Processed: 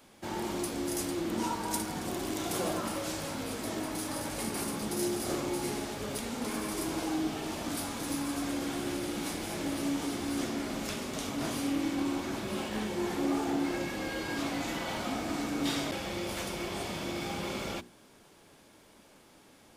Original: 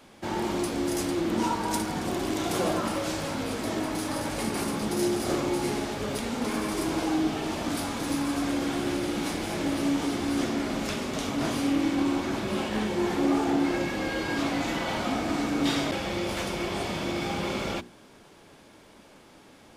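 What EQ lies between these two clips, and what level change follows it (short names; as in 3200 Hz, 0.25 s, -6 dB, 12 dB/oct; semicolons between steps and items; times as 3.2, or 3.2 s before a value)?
high shelf 7700 Hz +9.5 dB; -6.0 dB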